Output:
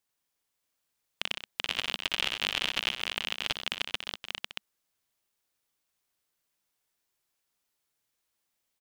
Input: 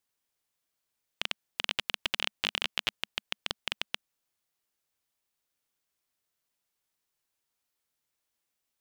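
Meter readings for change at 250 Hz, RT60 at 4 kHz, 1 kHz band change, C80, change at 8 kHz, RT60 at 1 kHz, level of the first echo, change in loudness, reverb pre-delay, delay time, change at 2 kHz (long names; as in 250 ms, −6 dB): +2.5 dB, no reverb audible, +2.5 dB, no reverb audible, +2.5 dB, no reverb audible, −8.5 dB, +2.0 dB, no reverb audible, 60 ms, +2.5 dB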